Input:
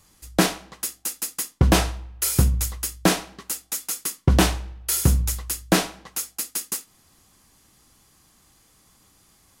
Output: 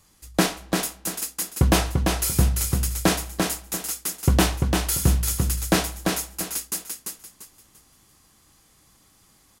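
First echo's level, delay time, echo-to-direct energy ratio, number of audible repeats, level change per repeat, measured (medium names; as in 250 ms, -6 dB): -4.0 dB, 343 ms, -3.5 dB, 3, -10.5 dB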